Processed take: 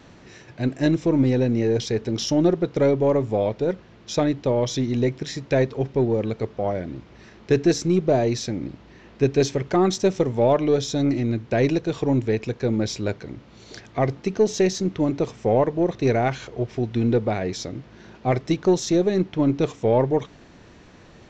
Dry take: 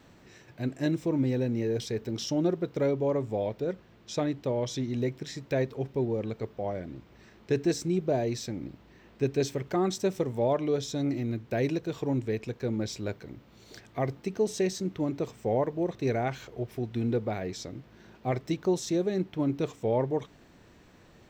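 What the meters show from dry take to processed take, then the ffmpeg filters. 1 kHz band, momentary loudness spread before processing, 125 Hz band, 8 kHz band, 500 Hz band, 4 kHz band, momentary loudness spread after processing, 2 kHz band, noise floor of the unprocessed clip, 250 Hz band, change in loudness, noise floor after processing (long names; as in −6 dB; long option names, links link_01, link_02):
+8.5 dB, 10 LU, +8.0 dB, +7.5 dB, +8.0 dB, +8.0 dB, 10 LU, +8.0 dB, −57 dBFS, +8.0 dB, +8.0 dB, −49 dBFS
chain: -af "aresample=16000,aresample=44100,aeval=exprs='0.168*(cos(1*acos(clip(val(0)/0.168,-1,1)))-cos(1*PI/2))+0.00335*(cos(6*acos(clip(val(0)/0.168,-1,1)))-cos(6*PI/2))':channel_layout=same,volume=8dB"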